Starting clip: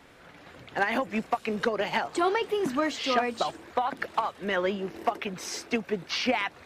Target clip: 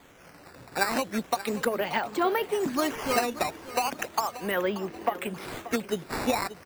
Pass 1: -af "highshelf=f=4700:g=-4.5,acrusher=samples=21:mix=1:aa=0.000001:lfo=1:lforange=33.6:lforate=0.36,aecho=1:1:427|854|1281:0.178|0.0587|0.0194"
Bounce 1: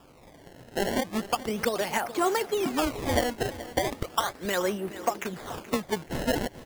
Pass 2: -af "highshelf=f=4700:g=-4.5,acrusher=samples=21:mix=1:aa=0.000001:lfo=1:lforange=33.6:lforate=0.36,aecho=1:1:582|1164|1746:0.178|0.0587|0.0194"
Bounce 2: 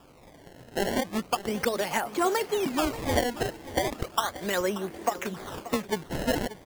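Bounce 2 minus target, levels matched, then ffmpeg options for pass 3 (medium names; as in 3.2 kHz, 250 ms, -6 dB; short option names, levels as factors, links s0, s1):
decimation with a swept rate: distortion +7 dB
-af "highshelf=f=4700:g=-4.5,acrusher=samples=8:mix=1:aa=0.000001:lfo=1:lforange=12.8:lforate=0.36,aecho=1:1:582|1164|1746:0.178|0.0587|0.0194"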